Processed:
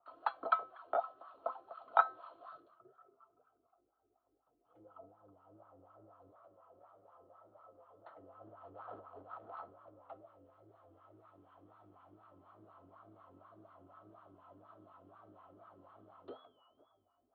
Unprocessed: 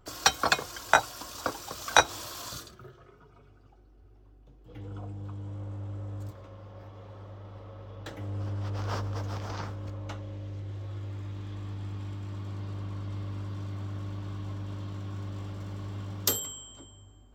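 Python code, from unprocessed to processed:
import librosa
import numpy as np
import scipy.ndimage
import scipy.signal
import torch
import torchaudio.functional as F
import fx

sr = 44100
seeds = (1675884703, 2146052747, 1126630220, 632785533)

y = fx.wow_flutter(x, sr, seeds[0], rate_hz=2.1, depth_cents=120.0)
y = fx.wah_lfo(y, sr, hz=4.1, low_hz=330.0, high_hz=1200.0, q=3.1)
y = scipy.signal.sosfilt(scipy.signal.cheby1(6, 6, 4300.0, 'lowpass', fs=sr, output='sos'), y)
y = fx.comb_fb(y, sr, f0_hz=260.0, decay_s=0.34, harmonics='all', damping=0.0, mix_pct=50)
y = fx.small_body(y, sr, hz=(680.0, 1300.0), ring_ms=45, db=13)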